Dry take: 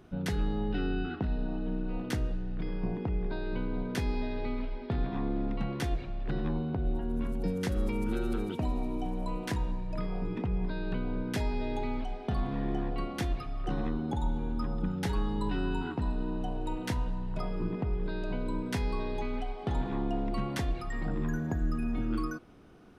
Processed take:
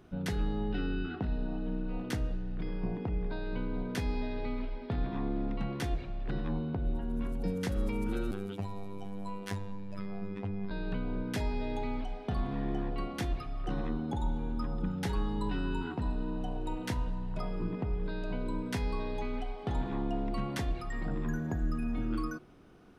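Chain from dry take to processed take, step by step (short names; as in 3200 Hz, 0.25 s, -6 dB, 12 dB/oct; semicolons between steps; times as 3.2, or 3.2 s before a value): 8.31–10.71 robotiser 98.9 Hz; de-hum 74.26 Hz, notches 12; gain -1.5 dB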